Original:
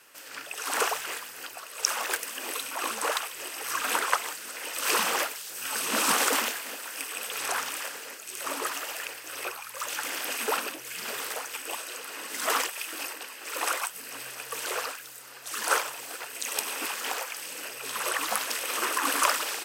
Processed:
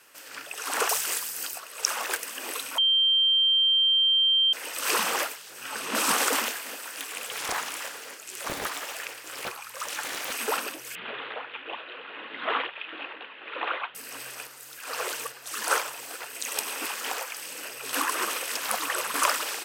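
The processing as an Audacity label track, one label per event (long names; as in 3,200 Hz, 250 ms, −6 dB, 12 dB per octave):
0.890000	1.580000	bass and treble bass +3 dB, treble +11 dB
2.780000	4.530000	beep over 3,150 Hz −18.5 dBFS
5.350000	5.950000	high-shelf EQ 4,700 Hz −9 dB
6.910000	10.330000	highs frequency-modulated by the lows depth 0.65 ms
10.950000	13.950000	Butterworth low-pass 3,700 Hz 72 dB per octave
14.470000	15.320000	reverse
17.930000	19.140000	reverse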